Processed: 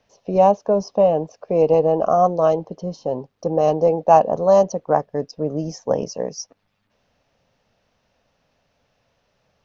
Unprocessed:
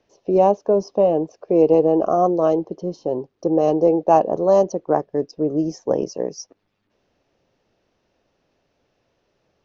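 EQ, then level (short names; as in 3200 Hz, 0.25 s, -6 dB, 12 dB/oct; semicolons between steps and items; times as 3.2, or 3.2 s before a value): bell 350 Hz -14 dB 0.54 oct; +3.5 dB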